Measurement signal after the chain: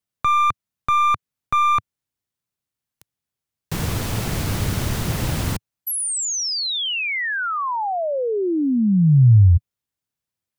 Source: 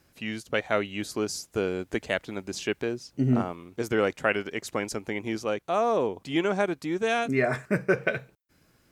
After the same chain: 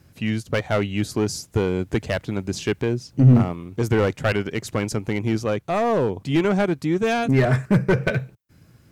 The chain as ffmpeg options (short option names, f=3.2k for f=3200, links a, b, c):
-af "aeval=exprs='clip(val(0),-1,0.0708)':c=same,equalizer=f=110:t=o:w=1.9:g=14,volume=3.5dB"